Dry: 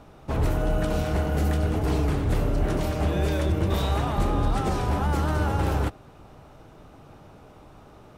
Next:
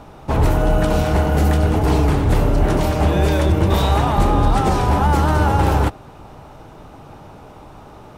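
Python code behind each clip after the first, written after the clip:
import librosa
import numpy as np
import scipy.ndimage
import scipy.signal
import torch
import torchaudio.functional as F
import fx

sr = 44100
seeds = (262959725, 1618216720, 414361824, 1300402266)

y = fx.peak_eq(x, sr, hz=890.0, db=5.0, octaves=0.39)
y = F.gain(torch.from_numpy(y), 8.0).numpy()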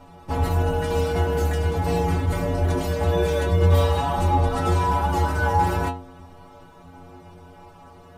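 y = fx.stiff_resonator(x, sr, f0_hz=85.0, decay_s=0.57, stiffness=0.008)
y = F.gain(torch.from_numpy(y), 6.5).numpy()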